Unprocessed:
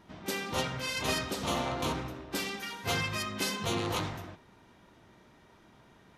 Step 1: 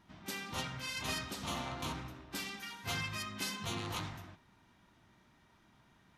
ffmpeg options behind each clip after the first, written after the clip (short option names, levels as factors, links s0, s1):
-af "equalizer=f=470:t=o:w=1:g=-9,volume=0.531"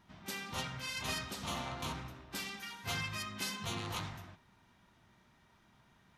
-af "equalizer=f=300:t=o:w=0.34:g=-5"